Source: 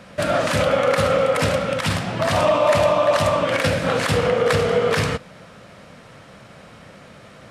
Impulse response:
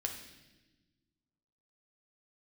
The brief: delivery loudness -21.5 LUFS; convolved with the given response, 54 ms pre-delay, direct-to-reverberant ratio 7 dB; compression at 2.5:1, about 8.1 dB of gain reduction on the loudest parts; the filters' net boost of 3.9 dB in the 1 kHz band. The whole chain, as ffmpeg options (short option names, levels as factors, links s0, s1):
-filter_complex "[0:a]equalizer=f=1000:t=o:g=5,acompressor=threshold=0.0631:ratio=2.5,asplit=2[s0][s1];[1:a]atrim=start_sample=2205,adelay=54[s2];[s1][s2]afir=irnorm=-1:irlink=0,volume=0.398[s3];[s0][s3]amix=inputs=2:normalize=0,volume=1.26"